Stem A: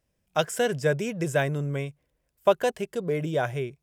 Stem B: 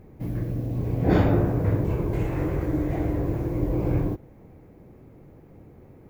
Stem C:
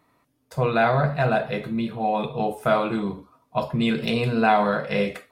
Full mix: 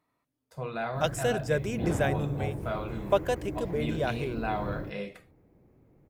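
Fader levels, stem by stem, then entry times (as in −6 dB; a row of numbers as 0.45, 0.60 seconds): −4.0, −12.0, −13.5 decibels; 0.65, 0.75, 0.00 seconds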